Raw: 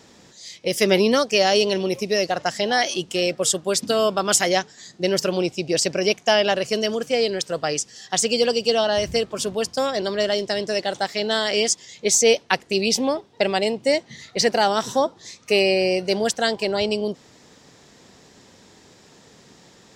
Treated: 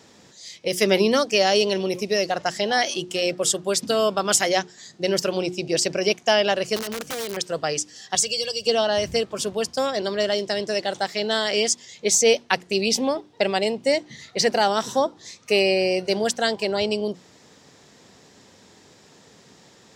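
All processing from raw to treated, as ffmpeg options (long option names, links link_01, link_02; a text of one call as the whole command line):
ffmpeg -i in.wav -filter_complex "[0:a]asettb=1/sr,asplit=3[link_01][link_02][link_03];[link_01]atrim=end=6.764[link_04];[link_02]atrim=start=6.76:end=7.37,asetpts=PTS-STARTPTS,afade=type=in:duration=0.004:curve=qsin,afade=type=out:start_time=0.606:duration=0.004:curve=qsin,lowshelf=frequency=110:gain=9,acompressor=threshold=-25dB:ratio=6:attack=3.2:release=140:knee=1:detection=peak,aeval=exprs='(mod(13.3*val(0)+1,2)-1)/13.3':channel_layout=same[link_05];[link_03]atrim=start=7.366[link_06];[link_04][link_05]acrossfade=duration=0.004:curve1=hsin:curve2=qsin[link_07];[link_07][link_06]acrossfade=duration=0.004:curve1=qsin:curve2=hsin,asettb=1/sr,asplit=3[link_08][link_09][link_10];[link_08]atrim=end=8.154[link_11];[link_09]atrim=start=8.15:end=8.67,asetpts=PTS-STARTPTS,afade=type=in:duration=0.004:curve=qsin,afade=type=out:start_time=0.516:duration=0.004:curve=qsin,aecho=1:1:1.8:0.86,atrim=end_sample=22932,acrossover=split=140|3000[link_12][link_13][link_14];[link_13]acompressor=threshold=-40dB:ratio=2:attack=3.2:release=140:knee=2.83:detection=peak[link_15];[link_12][link_15][link_14]amix=inputs=3:normalize=0[link_16];[link_10]atrim=start=8.666[link_17];[link_11][link_16]acrossfade=duration=0.004:curve1=hsin:curve2=qsin[link_18];[link_18][link_17]acrossfade=duration=0.004:curve1=qsin:curve2=hsin,highpass=60,bandreject=frequency=60:width_type=h:width=6,bandreject=frequency=120:width_type=h:width=6,bandreject=frequency=180:width_type=h:width=6,bandreject=frequency=240:width_type=h:width=6,bandreject=frequency=300:width_type=h:width=6,bandreject=frequency=360:width_type=h:width=6,volume=-1dB" out.wav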